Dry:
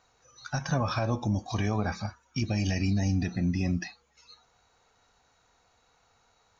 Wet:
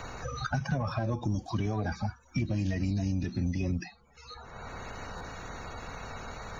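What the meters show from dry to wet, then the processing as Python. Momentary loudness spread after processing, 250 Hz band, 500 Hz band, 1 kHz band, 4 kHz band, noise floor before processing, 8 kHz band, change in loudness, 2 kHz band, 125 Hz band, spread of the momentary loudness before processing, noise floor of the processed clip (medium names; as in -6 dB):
13 LU, -2.5 dB, -2.0 dB, -1.0 dB, -4.5 dB, -68 dBFS, no reading, -4.0 dB, -1.5 dB, -1.5 dB, 8 LU, -60 dBFS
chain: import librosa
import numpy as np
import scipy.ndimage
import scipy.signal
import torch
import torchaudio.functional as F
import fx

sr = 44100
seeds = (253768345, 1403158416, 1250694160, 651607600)

p1 = fx.spec_quant(x, sr, step_db=30)
p2 = fx.low_shelf(p1, sr, hz=130.0, db=11.0)
p3 = 10.0 ** (-23.5 / 20.0) * np.tanh(p2 / 10.0 ** (-23.5 / 20.0))
p4 = p2 + F.gain(torch.from_numpy(p3), -3.0).numpy()
p5 = fx.buffer_glitch(p4, sr, at_s=(5.17,), block=512, repeats=2)
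p6 = fx.band_squash(p5, sr, depth_pct=100)
y = F.gain(torch.from_numpy(p6), -9.0).numpy()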